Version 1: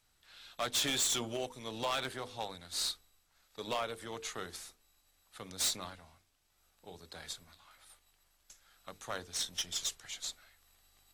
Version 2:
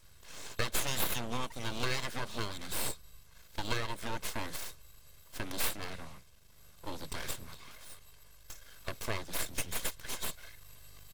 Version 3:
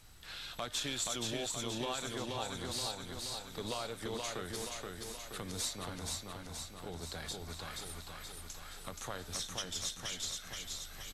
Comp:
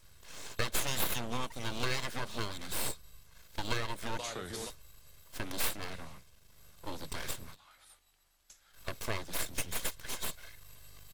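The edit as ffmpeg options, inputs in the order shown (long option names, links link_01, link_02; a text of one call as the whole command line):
ffmpeg -i take0.wav -i take1.wav -i take2.wav -filter_complex "[1:a]asplit=3[link_01][link_02][link_03];[link_01]atrim=end=4.192[link_04];[2:a]atrim=start=4.188:end=4.702[link_05];[link_02]atrim=start=4.698:end=7.59[link_06];[0:a]atrim=start=7.49:end=8.8[link_07];[link_03]atrim=start=8.7[link_08];[link_04][link_05]acrossfade=duration=0.004:curve1=hsin:curve2=hsin[link_09];[link_09][link_06]acrossfade=duration=0.004:curve1=hsin:curve2=hsin[link_10];[link_10][link_07]acrossfade=duration=0.1:curve1=tri:curve2=tri[link_11];[link_11][link_08]acrossfade=duration=0.1:curve1=tri:curve2=tri" out.wav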